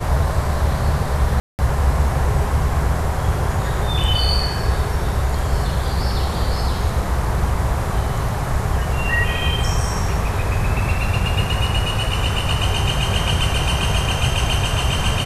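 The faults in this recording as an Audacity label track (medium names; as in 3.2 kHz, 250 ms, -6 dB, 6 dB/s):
1.400000	1.590000	dropout 189 ms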